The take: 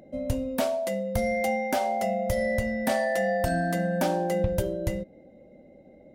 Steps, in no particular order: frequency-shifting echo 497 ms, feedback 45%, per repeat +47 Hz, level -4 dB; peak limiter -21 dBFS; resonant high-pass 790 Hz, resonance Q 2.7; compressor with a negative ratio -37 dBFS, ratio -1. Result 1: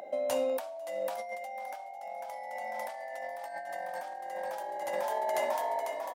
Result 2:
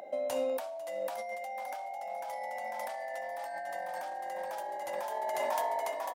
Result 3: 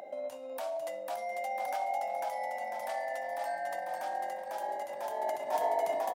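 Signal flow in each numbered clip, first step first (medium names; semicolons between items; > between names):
peak limiter > resonant high-pass > frequency-shifting echo > compressor with a negative ratio; resonant high-pass > frequency-shifting echo > peak limiter > compressor with a negative ratio; frequency-shifting echo > peak limiter > compressor with a negative ratio > resonant high-pass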